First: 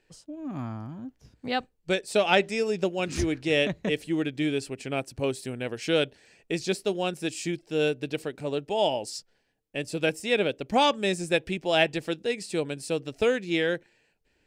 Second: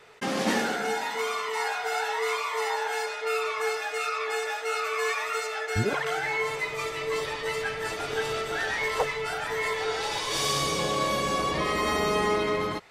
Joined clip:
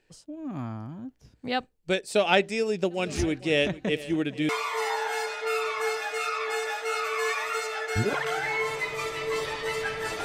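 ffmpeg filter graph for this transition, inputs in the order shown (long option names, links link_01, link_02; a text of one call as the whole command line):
ffmpeg -i cue0.wav -i cue1.wav -filter_complex "[0:a]asplit=3[link_01][link_02][link_03];[link_01]afade=type=out:start_time=2.9:duration=0.02[link_04];[link_02]aecho=1:1:453|906|1359|1812|2265:0.133|0.072|0.0389|0.021|0.0113,afade=type=in:start_time=2.9:duration=0.02,afade=type=out:start_time=4.49:duration=0.02[link_05];[link_03]afade=type=in:start_time=4.49:duration=0.02[link_06];[link_04][link_05][link_06]amix=inputs=3:normalize=0,apad=whole_dur=10.24,atrim=end=10.24,atrim=end=4.492[link_07];[1:a]atrim=start=2.288:end=8.04[link_08];[link_07][link_08]acrossfade=duration=0.004:curve1=hsin:curve2=hsin" out.wav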